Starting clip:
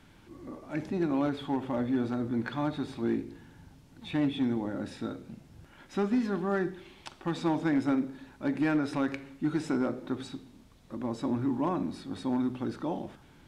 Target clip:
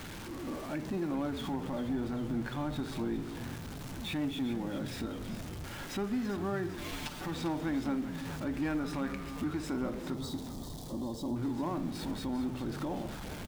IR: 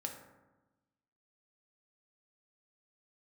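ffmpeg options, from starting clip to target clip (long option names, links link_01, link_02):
-filter_complex "[0:a]aeval=exprs='val(0)+0.5*0.0106*sgn(val(0))':channel_layout=same,asettb=1/sr,asplit=3[link_01][link_02][link_03];[link_01]atrim=end=6.774[link_04];[link_02]atrim=start=6.77:end=7.28,asetpts=PTS-STARTPTS,afade=type=in:duration=0.004:curve=qsin,afade=type=out:start_time=0.506:duration=0.004:curve=qsin,aecho=1:1:6.8:0.93,atrim=end_sample=22491[link_05];[link_03]atrim=start=7.276[link_06];[link_04][link_05]acrossfade=duration=0.004:curve1=hsin:curve2=qsin[link_07];[link_07][link_06]acrossfade=duration=0.004:curve1=qsin:curve2=hsin,alimiter=level_in=3.5dB:limit=-24dB:level=0:latency=1:release=230,volume=-3.5dB,asettb=1/sr,asplit=3[link_08][link_09][link_10];[link_08]atrim=end=8.784[link_11];[link_09]atrim=start=8.78:end=9.5,asetpts=PTS-STARTPTS,afade=type=in:duration=0.004:curve=qsin,afade=type=out:start_time=0.716:duration=0.004:curve=qsin,aeval=exprs='val(0)+0.00282*sin(2*PI*1200*n/s)':channel_layout=same[link_12];[link_10]atrim=start=9.496[link_13];[link_11][link_12]acrossfade=duration=0.004:curve1=hsin:curve2=qsin[link_14];[link_14][link_13]acrossfade=duration=0.004:curve1=qsin:curve2=hsin,asettb=1/sr,asplit=3[link_15][link_16][link_17];[link_15]atrim=end=10.144[link_18];[link_16]atrim=start=10.14:end=11.36,asetpts=PTS-STARTPTS,afade=type=in:duration=0.004:curve=qsin,afade=type=out:start_time=1.216:duration=0.004:curve=qsin,asuperstop=centerf=1900:order=8:qfactor=0.8[link_19];[link_17]atrim=start=11.356[link_20];[link_18][link_19]acrossfade=duration=0.004:curve1=hsin:curve2=qsin[link_21];[link_21][link_20]acrossfade=duration=0.004:curve1=qsin:curve2=hsin,asplit=8[link_22][link_23][link_24][link_25][link_26][link_27][link_28][link_29];[link_23]adelay=398,afreqshift=-110,volume=-11dB[link_30];[link_24]adelay=796,afreqshift=-220,volume=-15.2dB[link_31];[link_25]adelay=1194,afreqshift=-330,volume=-19.3dB[link_32];[link_26]adelay=1592,afreqshift=-440,volume=-23.5dB[link_33];[link_27]adelay=1990,afreqshift=-550,volume=-27.6dB[link_34];[link_28]adelay=2388,afreqshift=-660,volume=-31.8dB[link_35];[link_29]adelay=2786,afreqshift=-770,volume=-35.9dB[link_36];[link_22][link_30][link_31][link_32][link_33][link_34][link_35][link_36]amix=inputs=8:normalize=0"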